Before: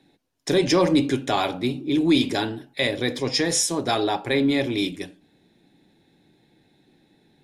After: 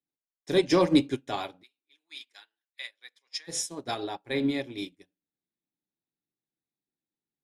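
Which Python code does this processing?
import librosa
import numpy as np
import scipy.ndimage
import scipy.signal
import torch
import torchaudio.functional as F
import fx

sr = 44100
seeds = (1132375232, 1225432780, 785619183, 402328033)

y = fx.cheby1_highpass(x, sr, hz=1600.0, order=2, at=(1.62, 3.47), fade=0.02)
y = fx.upward_expand(y, sr, threshold_db=-40.0, expansion=2.5)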